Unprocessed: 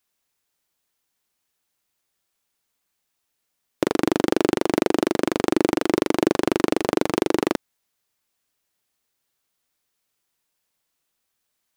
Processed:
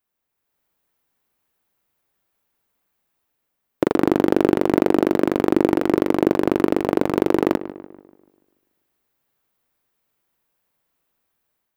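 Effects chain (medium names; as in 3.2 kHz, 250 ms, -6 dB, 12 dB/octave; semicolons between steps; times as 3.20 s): peaking EQ 6.2 kHz -12.5 dB 2.5 oct; level rider gain up to 7 dB; filtered feedback delay 145 ms, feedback 49%, low-pass 2.6 kHz, level -14 dB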